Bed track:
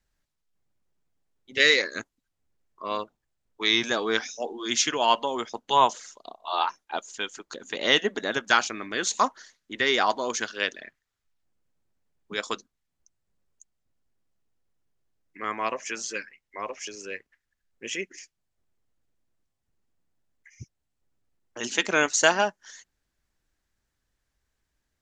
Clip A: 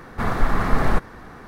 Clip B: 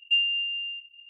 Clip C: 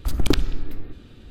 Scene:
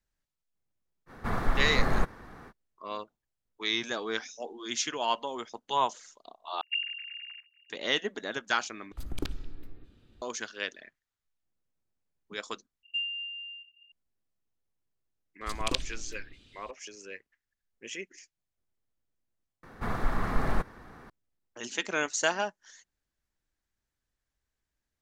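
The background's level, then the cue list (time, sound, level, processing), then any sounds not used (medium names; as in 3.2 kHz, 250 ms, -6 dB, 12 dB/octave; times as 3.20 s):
bed track -7.5 dB
1.06 s: add A -7.5 dB, fades 0.05 s
6.61 s: replace with B -10 dB + formants replaced by sine waves
8.92 s: replace with C -15 dB
12.83 s: replace with B -9.5 dB + peaking EQ 220 Hz +8.5 dB
15.41 s: add C -16.5 dB + high-order bell 4.5 kHz +14.5 dB 2.4 oct
19.63 s: replace with A -9 dB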